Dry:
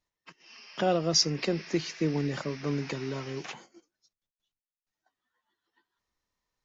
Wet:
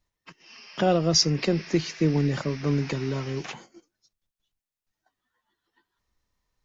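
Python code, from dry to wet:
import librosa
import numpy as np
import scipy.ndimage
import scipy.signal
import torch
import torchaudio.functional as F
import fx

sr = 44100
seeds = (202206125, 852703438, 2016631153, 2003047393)

y = fx.low_shelf(x, sr, hz=140.0, db=10.5)
y = F.gain(torch.from_numpy(y), 3.0).numpy()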